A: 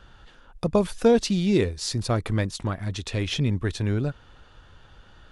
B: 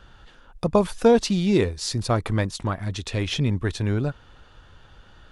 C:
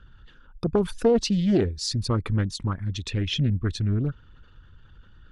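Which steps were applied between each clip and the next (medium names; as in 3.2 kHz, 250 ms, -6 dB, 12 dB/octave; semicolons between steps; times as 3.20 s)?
dynamic bell 950 Hz, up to +5 dB, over -39 dBFS, Q 1.4; trim +1 dB
resonances exaggerated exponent 1.5; peaking EQ 710 Hz -14 dB 0.7 oct; loudspeaker Doppler distortion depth 0.32 ms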